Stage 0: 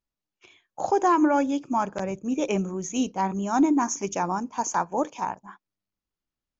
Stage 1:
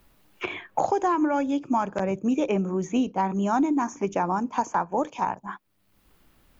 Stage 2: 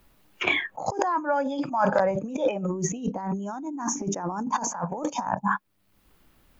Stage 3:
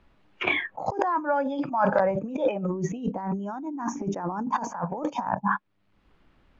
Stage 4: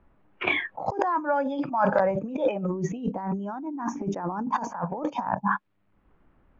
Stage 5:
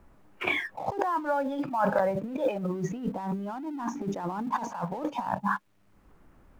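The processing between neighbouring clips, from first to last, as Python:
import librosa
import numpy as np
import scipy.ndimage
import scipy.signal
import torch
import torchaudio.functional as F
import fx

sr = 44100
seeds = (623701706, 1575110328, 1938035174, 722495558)

y1 = fx.peak_eq(x, sr, hz=6000.0, db=-9.5, octaves=1.2)
y1 = fx.band_squash(y1, sr, depth_pct=100)
y2 = fx.noise_reduce_blind(y1, sr, reduce_db=14)
y2 = fx.over_compress(y2, sr, threshold_db=-35.0, ratio=-1.0)
y2 = fx.spec_box(y2, sr, start_s=1.01, length_s=1.66, low_hz=490.0, high_hz=5300.0, gain_db=11)
y2 = y2 * 10.0 ** (5.0 / 20.0)
y3 = scipy.signal.sosfilt(scipy.signal.butter(2, 3100.0, 'lowpass', fs=sr, output='sos'), y2)
y4 = fx.env_lowpass(y3, sr, base_hz=1500.0, full_db=-20.0)
y5 = fx.law_mismatch(y4, sr, coded='mu')
y5 = y5 * 10.0 ** (-3.5 / 20.0)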